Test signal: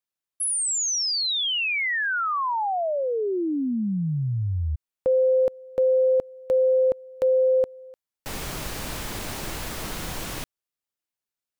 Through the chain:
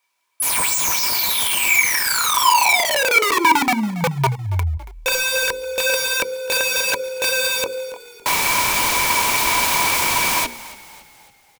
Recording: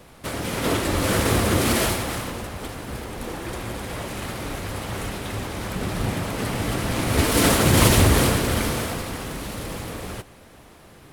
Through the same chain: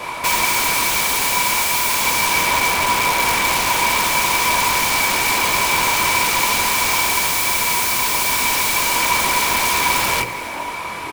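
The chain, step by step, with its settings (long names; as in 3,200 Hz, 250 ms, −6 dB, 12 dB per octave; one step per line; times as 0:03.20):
mains-hum notches 60/120/180/240/300/360/420/480/540 Hz
in parallel at +1 dB: downward compressor 10 to 1, threshold −31 dBFS
on the sum: mid-hump overdrive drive 23 dB, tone 6,200 Hz, clips at −2.5 dBFS
multi-voice chorus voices 6, 0.86 Hz, delay 23 ms, depth 1.8 ms
wrap-around overflow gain 15.5 dB
hollow resonant body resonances 980/2,300 Hz, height 18 dB, ringing for 50 ms
on a send: echo with shifted repeats 279 ms, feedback 50%, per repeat −39 Hz, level −18 dB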